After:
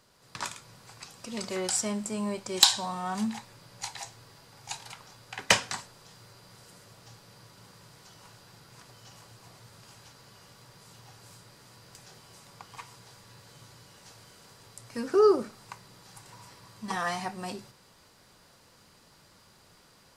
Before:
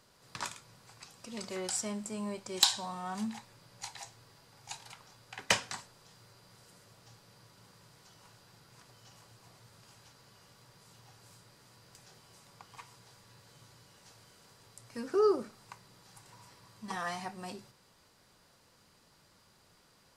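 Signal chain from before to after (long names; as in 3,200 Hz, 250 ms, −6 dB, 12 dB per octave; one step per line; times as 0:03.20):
automatic gain control gain up to 5 dB
level +1 dB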